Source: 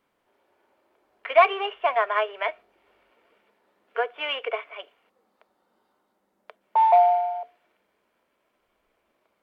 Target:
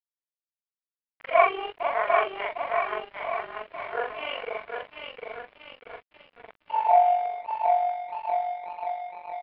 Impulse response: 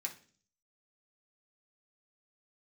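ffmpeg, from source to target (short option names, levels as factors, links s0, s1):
-af "afftfilt=real='re':imag='-im':win_size=4096:overlap=0.75,aecho=1:1:750|1388|1929|2390|2781:0.631|0.398|0.251|0.158|0.1,aresample=11025,aeval=exprs='sgn(val(0))*max(abs(val(0))-0.00668,0)':c=same,aresample=44100,tremolo=f=47:d=0.519,lowpass=f=2900:w=0.5412,lowpass=f=2900:w=1.3066,volume=1.68"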